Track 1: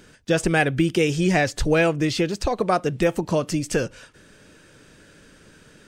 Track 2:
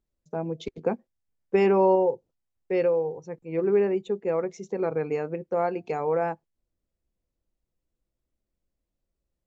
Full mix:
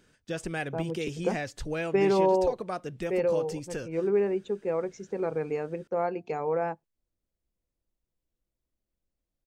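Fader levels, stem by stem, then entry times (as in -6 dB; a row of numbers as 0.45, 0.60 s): -13.5, -3.0 dB; 0.00, 0.40 s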